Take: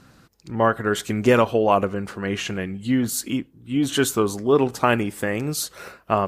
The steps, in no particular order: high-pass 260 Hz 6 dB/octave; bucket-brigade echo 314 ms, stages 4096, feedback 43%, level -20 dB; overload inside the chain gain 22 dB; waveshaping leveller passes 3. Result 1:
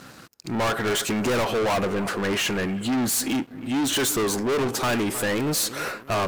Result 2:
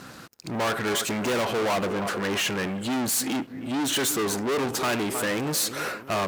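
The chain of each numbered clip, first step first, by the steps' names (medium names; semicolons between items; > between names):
high-pass > overload inside the chain > bucket-brigade echo > waveshaping leveller; bucket-brigade echo > overload inside the chain > waveshaping leveller > high-pass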